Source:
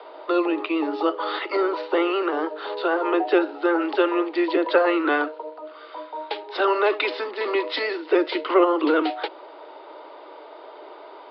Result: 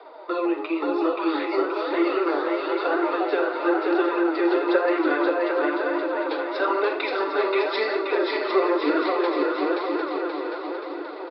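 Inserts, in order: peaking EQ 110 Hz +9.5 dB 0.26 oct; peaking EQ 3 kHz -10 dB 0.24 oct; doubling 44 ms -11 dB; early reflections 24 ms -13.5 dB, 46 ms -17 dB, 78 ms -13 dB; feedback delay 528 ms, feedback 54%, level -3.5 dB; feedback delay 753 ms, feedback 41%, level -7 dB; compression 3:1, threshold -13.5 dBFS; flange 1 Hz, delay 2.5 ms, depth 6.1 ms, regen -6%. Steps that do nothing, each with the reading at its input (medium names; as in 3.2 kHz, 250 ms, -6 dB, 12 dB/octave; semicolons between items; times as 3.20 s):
peaking EQ 110 Hz: input has nothing below 270 Hz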